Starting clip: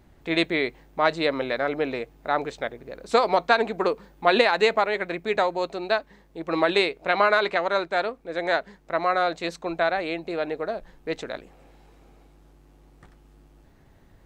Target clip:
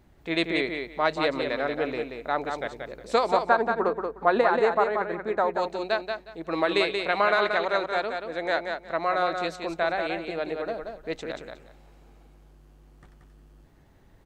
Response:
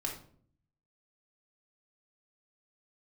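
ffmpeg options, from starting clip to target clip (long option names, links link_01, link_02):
-filter_complex "[0:a]asettb=1/sr,asplit=3[link_01][link_02][link_03];[link_01]atrim=end=3.284[link_04];[link_02]atrim=start=3.28:end=5.54,asetpts=PTS-STARTPTS,afade=type=in:duration=0.004:curve=qsin,afade=type=out:start_time=2.256:duration=0.004:curve=qsin,highshelf=frequency=1900:width_type=q:width=1.5:gain=-10.5[link_05];[link_03]atrim=start=5.536[link_06];[link_04][link_05]acrossfade=duration=0.004:curve1=hsin:curve2=qsin[link_07];[link_07][link_06]acrossfade=duration=0.004:curve1=qsin:curve2=hsin,aecho=1:1:181|362|543:0.531|0.106|0.0212,volume=-3dB"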